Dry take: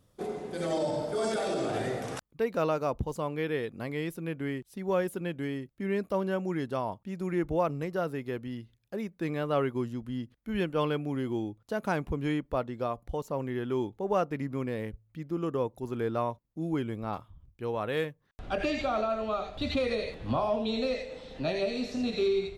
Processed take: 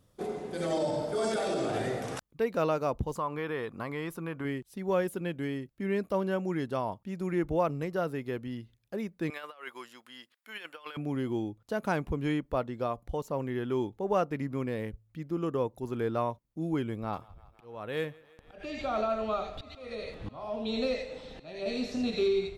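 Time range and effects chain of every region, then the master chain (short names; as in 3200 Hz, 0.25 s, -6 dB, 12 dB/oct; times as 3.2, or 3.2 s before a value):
3.15–4.45 bell 1100 Hz +13.5 dB 0.86 oct + compressor 2:1, threshold -33 dBFS
9.3–10.97 HPF 1100 Hz + notch 6100 Hz, Q 13 + negative-ratio compressor -42 dBFS, ratio -0.5
16.87–21.66 auto swell 0.509 s + thinning echo 0.164 s, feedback 79%, high-pass 300 Hz, level -23 dB
whole clip: dry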